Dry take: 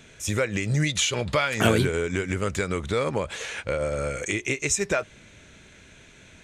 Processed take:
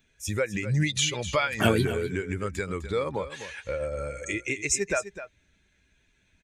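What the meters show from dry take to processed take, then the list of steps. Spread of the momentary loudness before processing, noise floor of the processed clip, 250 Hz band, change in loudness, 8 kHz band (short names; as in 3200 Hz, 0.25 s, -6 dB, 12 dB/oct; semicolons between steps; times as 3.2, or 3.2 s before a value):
8 LU, -68 dBFS, -2.5 dB, -2.5 dB, -2.5 dB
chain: per-bin expansion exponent 1.5; echo 0.254 s -12.5 dB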